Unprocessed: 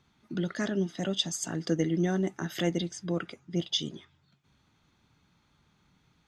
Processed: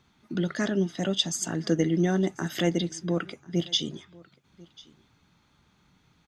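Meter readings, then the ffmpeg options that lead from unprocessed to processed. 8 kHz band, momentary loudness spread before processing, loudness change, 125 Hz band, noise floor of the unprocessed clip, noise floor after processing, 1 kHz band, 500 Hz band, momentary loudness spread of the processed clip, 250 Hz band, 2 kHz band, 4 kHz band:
+3.5 dB, 7 LU, +3.5 dB, +3.5 dB, −69 dBFS, −66 dBFS, +3.5 dB, +3.5 dB, 7 LU, +3.5 dB, +3.5 dB, +3.5 dB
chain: -af "bandreject=frequency=50:width_type=h:width=6,bandreject=frequency=100:width_type=h:width=6,bandreject=frequency=150:width_type=h:width=6,aecho=1:1:1043:0.0668,volume=3.5dB"

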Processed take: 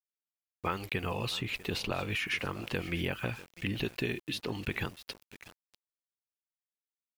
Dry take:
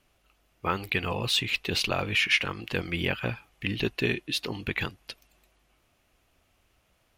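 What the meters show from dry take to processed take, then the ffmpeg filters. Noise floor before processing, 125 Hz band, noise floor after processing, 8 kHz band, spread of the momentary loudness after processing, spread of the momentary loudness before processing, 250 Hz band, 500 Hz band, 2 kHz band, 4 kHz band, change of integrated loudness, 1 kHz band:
−69 dBFS, −3.0 dB, below −85 dBFS, −8.0 dB, 7 LU, 10 LU, −3.5 dB, −4.5 dB, −7.5 dB, −9.0 dB, −6.5 dB, −4.5 dB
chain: -filter_complex "[0:a]aecho=1:1:646:0.0944,aeval=exprs='val(0)*gte(abs(val(0)),0.00447)':channel_layout=same,acrossover=split=1500|7400[link_01][link_02][link_03];[link_01]acompressor=threshold=-31dB:ratio=4[link_04];[link_02]acompressor=threshold=-38dB:ratio=4[link_05];[link_03]acompressor=threshold=-50dB:ratio=4[link_06];[link_04][link_05][link_06]amix=inputs=3:normalize=0"

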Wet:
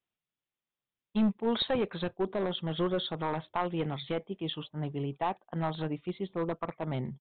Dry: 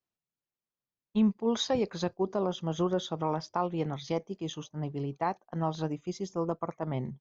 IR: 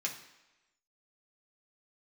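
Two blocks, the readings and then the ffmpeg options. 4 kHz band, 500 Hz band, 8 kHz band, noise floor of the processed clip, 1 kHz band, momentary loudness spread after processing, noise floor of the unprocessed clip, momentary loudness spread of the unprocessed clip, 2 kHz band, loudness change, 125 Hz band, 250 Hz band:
+2.5 dB, −1.0 dB, can't be measured, below −85 dBFS, −1.0 dB, 7 LU, below −85 dBFS, 8 LU, +4.0 dB, −1.0 dB, −1.0 dB, −1.5 dB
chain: -af "highshelf=frequency=2900:gain=10.5,aresample=8000,aeval=exprs='clip(val(0),-1,0.0596)':channel_layout=same,aresample=44100"

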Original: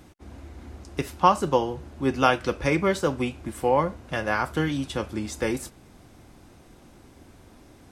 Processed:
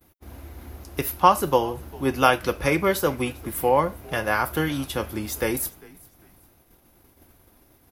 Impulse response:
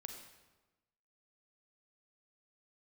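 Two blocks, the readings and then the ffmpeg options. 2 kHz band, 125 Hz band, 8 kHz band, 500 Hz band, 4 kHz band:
+2.5 dB, 0.0 dB, +6.5 dB, +1.5 dB, +2.5 dB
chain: -filter_complex "[0:a]agate=range=-33dB:threshold=-43dB:ratio=3:detection=peak,aexciter=amount=11.1:drive=4.9:freq=11000,equalizer=frequency=200:width_type=o:width=1.4:gain=-4,asplit=2[link_01][link_02];[link_02]asplit=2[link_03][link_04];[link_03]adelay=399,afreqshift=-85,volume=-23dB[link_05];[link_04]adelay=798,afreqshift=-170,volume=-32.9dB[link_06];[link_05][link_06]amix=inputs=2:normalize=0[link_07];[link_01][link_07]amix=inputs=2:normalize=0,volume=2.5dB"

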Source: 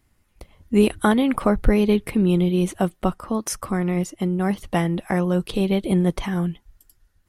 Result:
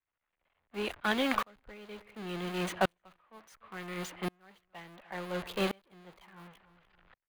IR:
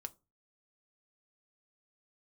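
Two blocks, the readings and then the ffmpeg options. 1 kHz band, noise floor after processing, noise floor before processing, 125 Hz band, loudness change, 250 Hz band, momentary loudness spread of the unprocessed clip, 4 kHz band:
−9.5 dB, below −85 dBFS, −65 dBFS, −21.0 dB, −13.5 dB, −19.5 dB, 7 LU, −5.5 dB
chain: -filter_complex "[0:a]aeval=exprs='val(0)+0.5*0.0944*sgn(val(0))':channel_layout=same,agate=range=-33dB:threshold=-12dB:ratio=3:detection=peak,acrossover=split=550 5200:gain=0.158 1 0.126[link_01][link_02][link_03];[link_01][link_02][link_03]amix=inputs=3:normalize=0,bandreject=frequency=5400:width=8.3,acrossover=split=380|1500|3200[link_04][link_05][link_06][link_07];[link_05]alimiter=limit=-24dB:level=0:latency=1:release=127[link_08];[link_07]acrusher=bits=7:mix=0:aa=0.000001[link_09];[link_04][link_08][link_06][link_09]amix=inputs=4:normalize=0,asplit=2[link_10][link_11];[link_11]adelay=296,lowpass=frequency=5000:poles=1,volume=-20.5dB,asplit=2[link_12][link_13];[link_13]adelay=296,lowpass=frequency=5000:poles=1,volume=0.18[link_14];[link_10][link_12][link_14]amix=inputs=3:normalize=0,aeval=exprs='val(0)*pow(10,-36*if(lt(mod(-0.7*n/s,1),2*abs(-0.7)/1000),1-mod(-0.7*n/s,1)/(2*abs(-0.7)/1000),(mod(-0.7*n/s,1)-2*abs(-0.7)/1000)/(1-2*abs(-0.7)/1000))/20)':channel_layout=same,volume=6dB"

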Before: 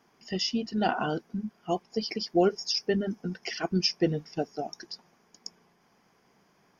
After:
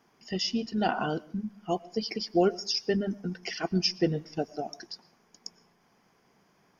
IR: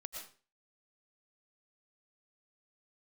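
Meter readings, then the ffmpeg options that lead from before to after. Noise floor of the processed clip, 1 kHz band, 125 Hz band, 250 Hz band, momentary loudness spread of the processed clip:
−67 dBFS, −0.5 dB, 0.0 dB, −0.5 dB, 17 LU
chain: -filter_complex "[0:a]asplit=2[link_01][link_02];[1:a]atrim=start_sample=2205,lowshelf=frequency=240:gain=10.5[link_03];[link_02][link_03]afir=irnorm=-1:irlink=0,volume=-15.5dB[link_04];[link_01][link_04]amix=inputs=2:normalize=0,volume=-1.5dB"

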